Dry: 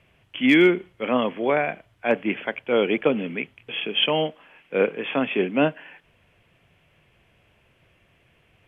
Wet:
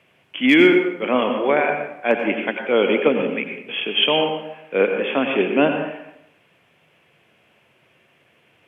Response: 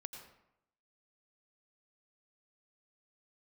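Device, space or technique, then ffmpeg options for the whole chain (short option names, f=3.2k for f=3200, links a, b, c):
bathroom: -filter_complex "[1:a]atrim=start_sample=2205[a];[0:a][a]afir=irnorm=-1:irlink=0,highpass=200,volume=8dB"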